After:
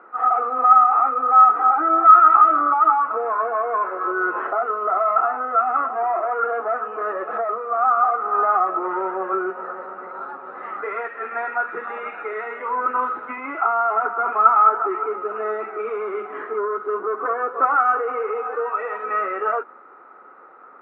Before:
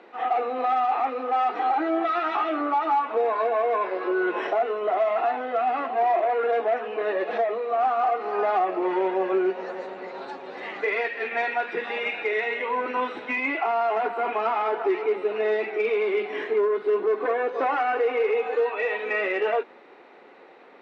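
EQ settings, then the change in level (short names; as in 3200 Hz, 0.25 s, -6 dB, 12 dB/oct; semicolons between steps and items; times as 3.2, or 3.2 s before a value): synth low-pass 1300 Hz, resonance Q 15; -4.0 dB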